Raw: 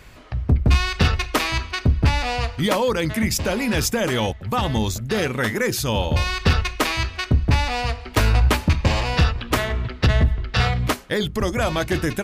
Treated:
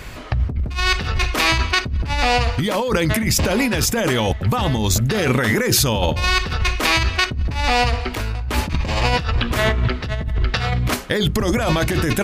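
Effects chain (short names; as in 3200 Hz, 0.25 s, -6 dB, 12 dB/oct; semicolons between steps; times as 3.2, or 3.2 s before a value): in parallel at -2 dB: limiter -16 dBFS, peak gain reduction 7.5 dB; on the sum: negative-ratio compressor -21 dBFS, ratio -1; gain +2 dB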